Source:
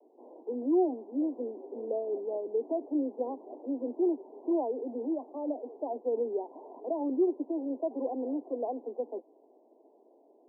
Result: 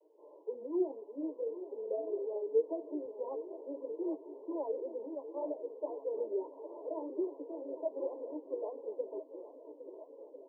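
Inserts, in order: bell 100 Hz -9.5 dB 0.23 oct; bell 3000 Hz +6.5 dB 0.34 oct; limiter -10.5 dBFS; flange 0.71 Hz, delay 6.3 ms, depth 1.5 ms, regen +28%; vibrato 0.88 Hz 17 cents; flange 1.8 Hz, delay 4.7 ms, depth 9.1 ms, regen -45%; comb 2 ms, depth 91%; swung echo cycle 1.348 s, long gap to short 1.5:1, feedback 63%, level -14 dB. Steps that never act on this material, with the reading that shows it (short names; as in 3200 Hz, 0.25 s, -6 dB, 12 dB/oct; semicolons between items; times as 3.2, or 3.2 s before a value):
bell 100 Hz: input band starts at 210 Hz; bell 3000 Hz: input band ends at 1000 Hz; limiter -10.5 dBFS: input peak -17.5 dBFS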